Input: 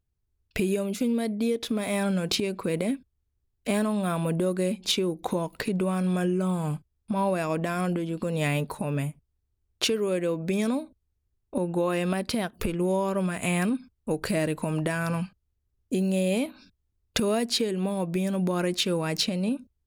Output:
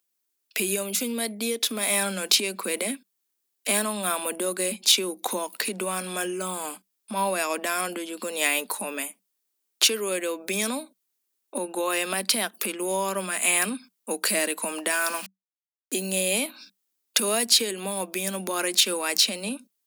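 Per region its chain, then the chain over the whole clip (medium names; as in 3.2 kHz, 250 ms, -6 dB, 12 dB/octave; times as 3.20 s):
14.92–15.96 s: comb 2.8 ms, depth 47% + small samples zeroed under -42.5 dBFS
whole clip: Chebyshev high-pass 190 Hz, order 8; tilt EQ +4 dB/octave; loudness maximiser +8 dB; trim -5 dB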